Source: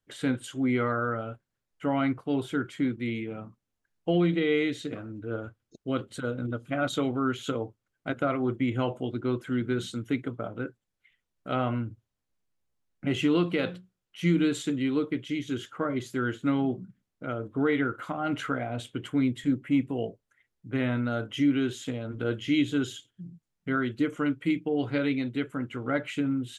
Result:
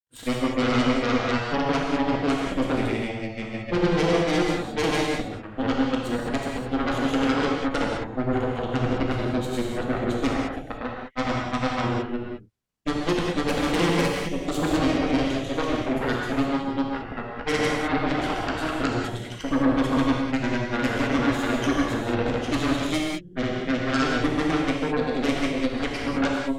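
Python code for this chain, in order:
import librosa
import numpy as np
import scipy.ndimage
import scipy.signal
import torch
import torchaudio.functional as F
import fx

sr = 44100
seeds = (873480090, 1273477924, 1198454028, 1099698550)

y = fx.granulator(x, sr, seeds[0], grain_ms=100.0, per_s=20.0, spray_ms=482.0, spread_st=0)
y = fx.cheby_harmonics(y, sr, harmonics=(8,), levels_db=(-11,), full_scale_db=-15.5)
y = fx.rev_gated(y, sr, seeds[1], gate_ms=230, shape='flat', drr_db=-1.5)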